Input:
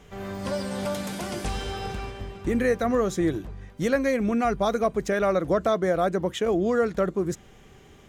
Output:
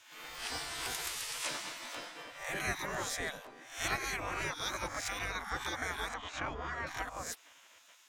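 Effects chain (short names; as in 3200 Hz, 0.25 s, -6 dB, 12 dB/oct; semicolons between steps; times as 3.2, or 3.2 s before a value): spectral swells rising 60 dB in 0.47 s; 6.14–6.87 Bessel low-pass 3000 Hz, order 2; spectral gate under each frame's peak -20 dB weak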